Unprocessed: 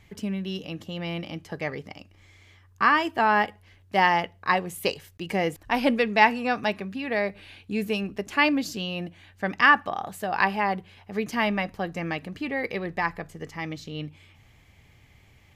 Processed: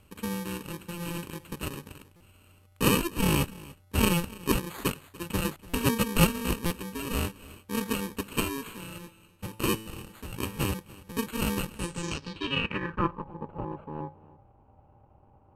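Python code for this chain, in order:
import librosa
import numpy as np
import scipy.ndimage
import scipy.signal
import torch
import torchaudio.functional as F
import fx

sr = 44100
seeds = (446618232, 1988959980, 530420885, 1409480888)

y = fx.bit_reversed(x, sr, seeds[0], block=64)
y = np.repeat(y[::8], 8)[:len(y)]
y = fx.comb_fb(y, sr, f0_hz=110.0, decay_s=0.99, harmonics='all', damping=0.0, mix_pct=60, at=(8.4, 10.6))
y = y + 10.0 ** (-20.5 / 20.0) * np.pad(y, (int(291 * sr / 1000.0), 0))[:len(y)]
y = fx.filter_sweep_lowpass(y, sr, from_hz=12000.0, to_hz=810.0, start_s=11.72, end_s=13.31, q=4.3)
y = fx.buffer_glitch(y, sr, at_s=(2.16, 5.69, 6.66, 11.12), block=256, repeats=7)
y = y * librosa.db_to_amplitude(-3.5)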